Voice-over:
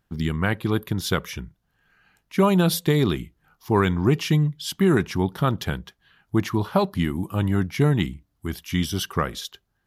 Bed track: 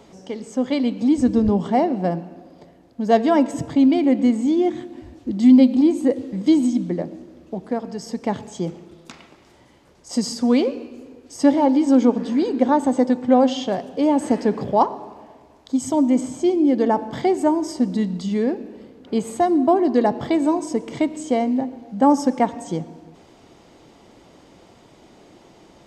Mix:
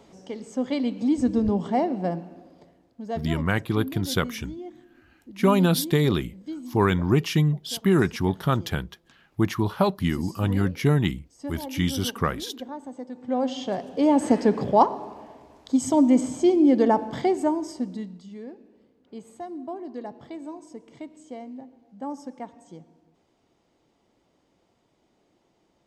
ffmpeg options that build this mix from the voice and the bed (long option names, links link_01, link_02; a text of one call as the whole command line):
ffmpeg -i stem1.wav -i stem2.wav -filter_complex "[0:a]adelay=3050,volume=-1dB[link_01];[1:a]volume=14dB,afade=type=out:start_time=2.39:duration=0.88:silence=0.188365,afade=type=in:start_time=13.11:duration=1.11:silence=0.112202,afade=type=out:start_time=16.79:duration=1.43:silence=0.125893[link_02];[link_01][link_02]amix=inputs=2:normalize=0" out.wav